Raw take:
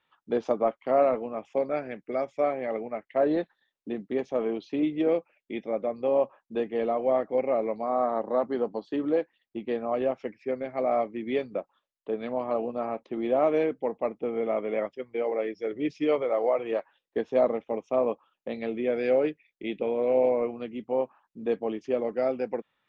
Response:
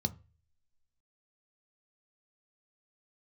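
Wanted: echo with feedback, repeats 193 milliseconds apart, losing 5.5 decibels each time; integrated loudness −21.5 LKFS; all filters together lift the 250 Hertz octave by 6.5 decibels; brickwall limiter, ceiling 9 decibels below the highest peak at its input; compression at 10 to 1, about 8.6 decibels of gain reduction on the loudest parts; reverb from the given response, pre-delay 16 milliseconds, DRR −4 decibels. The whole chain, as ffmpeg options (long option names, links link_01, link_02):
-filter_complex "[0:a]equalizer=frequency=250:width_type=o:gain=8,acompressor=threshold=-25dB:ratio=10,alimiter=level_in=1dB:limit=-24dB:level=0:latency=1,volume=-1dB,aecho=1:1:193|386|579|772|965|1158|1351:0.531|0.281|0.149|0.079|0.0419|0.0222|0.0118,asplit=2[link_01][link_02];[1:a]atrim=start_sample=2205,adelay=16[link_03];[link_02][link_03]afir=irnorm=-1:irlink=0,volume=1.5dB[link_04];[link_01][link_04]amix=inputs=2:normalize=0,volume=1dB"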